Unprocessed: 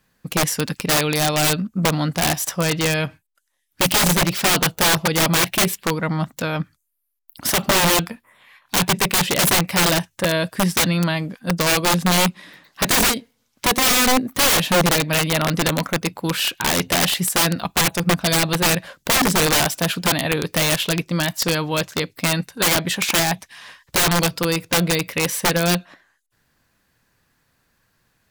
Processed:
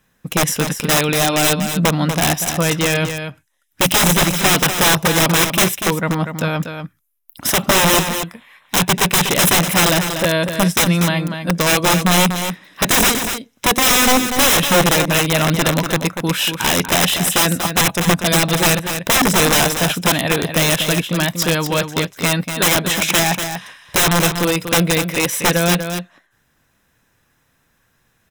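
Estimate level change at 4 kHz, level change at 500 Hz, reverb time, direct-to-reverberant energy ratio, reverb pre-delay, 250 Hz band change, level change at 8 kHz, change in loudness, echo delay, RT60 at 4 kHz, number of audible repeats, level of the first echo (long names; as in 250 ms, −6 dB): +3.0 dB, +3.5 dB, no reverb audible, no reverb audible, no reverb audible, +3.5 dB, +3.5 dB, +3.5 dB, 241 ms, no reverb audible, 1, −8.0 dB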